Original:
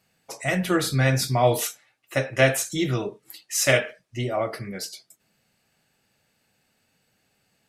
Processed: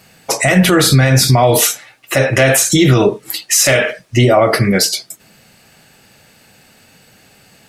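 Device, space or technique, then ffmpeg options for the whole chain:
loud club master: -af "acompressor=threshold=-24dB:ratio=2.5,asoftclip=type=hard:threshold=-14.5dB,alimiter=level_in=22.5dB:limit=-1dB:release=50:level=0:latency=1,volume=-1dB"

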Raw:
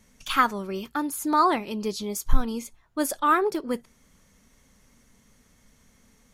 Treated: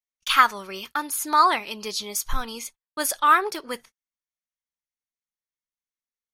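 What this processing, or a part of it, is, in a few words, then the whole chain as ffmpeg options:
low shelf boost with a cut just above: -af "lowshelf=f=89:g=3,equalizer=f=250:t=o:w=0.82:g=-2,highshelf=f=7.9k:g=-4.5,bandreject=f=7.5k:w=10,agate=range=-43dB:threshold=-42dB:ratio=16:detection=peak,tiltshelf=f=640:g=-10,volume=-1dB"

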